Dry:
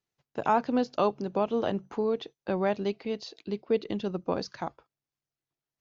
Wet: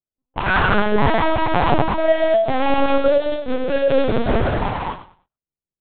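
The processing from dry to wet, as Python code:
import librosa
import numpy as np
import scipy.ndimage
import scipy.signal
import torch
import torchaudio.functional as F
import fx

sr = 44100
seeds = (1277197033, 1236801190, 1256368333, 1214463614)

p1 = fx.pitch_glide(x, sr, semitones=10.5, runs='ending unshifted')
p2 = scipy.signal.sosfilt(scipy.signal.butter(4, 61.0, 'highpass', fs=sr, output='sos'), p1)
p3 = fx.notch(p2, sr, hz=2300.0, q=8.4)
p4 = fx.comb_fb(p3, sr, f0_hz=110.0, decay_s=0.26, harmonics='all', damping=0.0, mix_pct=50)
p5 = fx.fuzz(p4, sr, gain_db=44.0, gate_db=-47.0)
p6 = p4 + F.gain(torch.from_numpy(p5), -5.0).numpy()
p7 = fx.env_lowpass(p6, sr, base_hz=510.0, full_db=-17.5)
p8 = p7 + fx.echo_feedback(p7, sr, ms=100, feedback_pct=26, wet_db=-12.5, dry=0)
p9 = fx.rev_gated(p8, sr, seeds[0], gate_ms=290, shape='flat', drr_db=-4.0)
p10 = fx.lpc_vocoder(p9, sr, seeds[1], excitation='pitch_kept', order=8)
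y = F.gain(torch.from_numpy(p10), -1.5).numpy()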